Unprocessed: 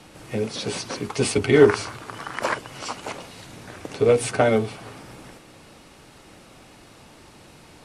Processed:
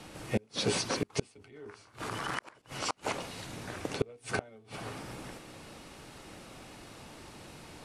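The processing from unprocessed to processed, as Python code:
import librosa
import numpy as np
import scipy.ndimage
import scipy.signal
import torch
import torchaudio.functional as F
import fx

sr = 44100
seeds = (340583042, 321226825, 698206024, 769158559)

y = fx.transient(x, sr, attack_db=-5, sustain_db=8, at=(1.36, 2.62))
y = fx.gate_flip(y, sr, shuts_db=-16.0, range_db=-33)
y = y * librosa.db_to_amplitude(-1.0)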